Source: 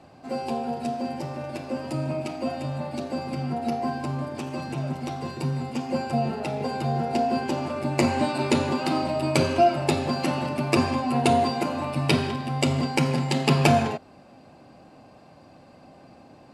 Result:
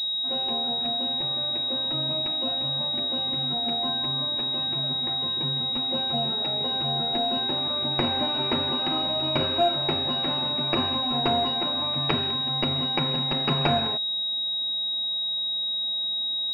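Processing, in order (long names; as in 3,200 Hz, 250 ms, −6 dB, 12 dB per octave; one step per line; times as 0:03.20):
tilt shelving filter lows −7 dB, about 1,400 Hz
switching amplifier with a slow clock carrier 3,800 Hz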